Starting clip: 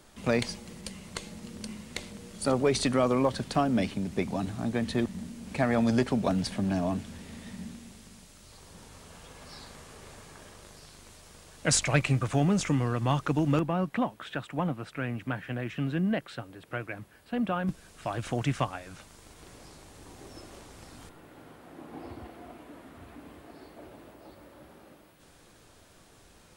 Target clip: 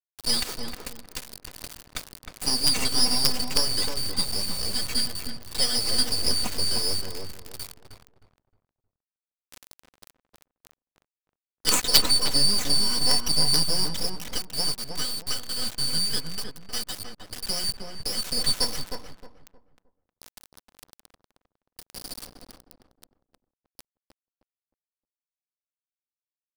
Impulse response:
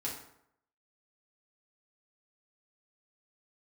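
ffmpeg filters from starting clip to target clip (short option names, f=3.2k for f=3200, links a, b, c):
-filter_complex "[0:a]afftfilt=real='real(if(lt(b,272),68*(eq(floor(b/68),0)*3+eq(floor(b/68),1)*2+eq(floor(b/68),2)*1+eq(floor(b/68),3)*0)+mod(b,68),b),0)':imag='imag(if(lt(b,272),68*(eq(floor(b/68),0)*3+eq(floor(b/68),1)*2+eq(floor(b/68),2)*1+eq(floor(b/68),3)*0)+mod(b,68),b),0)':win_size=2048:overlap=0.75,equalizer=f=3.5k:w=4:g=-2,aecho=1:1:4:0.94,acrusher=bits=3:dc=4:mix=0:aa=0.000001,asplit=2[a][b];[b]adelay=311,lowpass=f=1.3k:p=1,volume=-3dB,asplit=2[c][d];[d]adelay=311,lowpass=f=1.3k:p=1,volume=0.31,asplit=2[e][f];[f]adelay=311,lowpass=f=1.3k:p=1,volume=0.31,asplit=2[g][h];[h]adelay=311,lowpass=f=1.3k:p=1,volume=0.31[i];[c][e][g][i]amix=inputs=4:normalize=0[j];[a][j]amix=inputs=2:normalize=0,volume=3.5dB"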